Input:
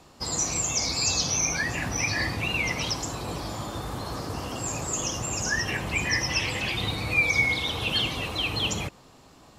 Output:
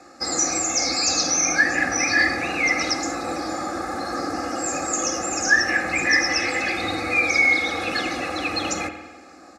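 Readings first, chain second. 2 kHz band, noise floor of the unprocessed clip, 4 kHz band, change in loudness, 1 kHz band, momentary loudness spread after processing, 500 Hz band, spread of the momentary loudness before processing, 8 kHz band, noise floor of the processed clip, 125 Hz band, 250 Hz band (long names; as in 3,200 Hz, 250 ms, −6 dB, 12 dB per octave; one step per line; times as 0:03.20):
+7.5 dB, −53 dBFS, +1.5 dB, +5.0 dB, +8.0 dB, 10 LU, +7.0 dB, 11 LU, +4.5 dB, −46 dBFS, −8.5 dB, +6.5 dB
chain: phaser with its sweep stopped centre 630 Hz, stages 8
comb filter 2.4 ms, depth 63%
in parallel at −9 dB: gain into a clipping stage and back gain 27.5 dB
on the sum: band-pass filter 180–5,900 Hz
spring reverb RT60 1.2 s, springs 49 ms, chirp 75 ms, DRR 7.5 dB
level +7.5 dB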